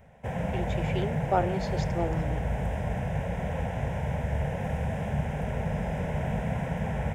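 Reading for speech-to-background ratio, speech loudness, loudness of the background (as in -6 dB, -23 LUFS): -2.5 dB, -33.5 LUFS, -31.0 LUFS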